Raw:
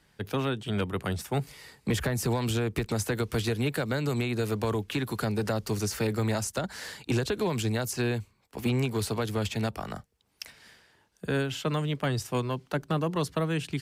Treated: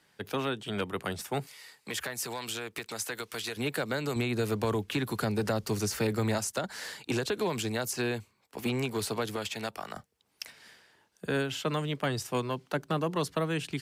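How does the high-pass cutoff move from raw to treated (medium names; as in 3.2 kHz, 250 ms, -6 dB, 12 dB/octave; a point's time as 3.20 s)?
high-pass 6 dB/octave
300 Hz
from 1.47 s 1.3 kHz
from 3.57 s 310 Hz
from 4.16 s 95 Hz
from 6.38 s 270 Hz
from 9.36 s 650 Hz
from 9.96 s 200 Hz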